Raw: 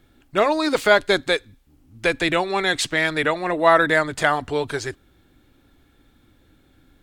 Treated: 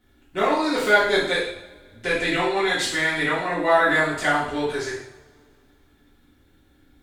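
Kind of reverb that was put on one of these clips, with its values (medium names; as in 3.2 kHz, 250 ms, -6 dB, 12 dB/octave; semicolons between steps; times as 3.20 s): two-slope reverb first 0.67 s, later 2.4 s, from -24 dB, DRR -9.5 dB; trim -11 dB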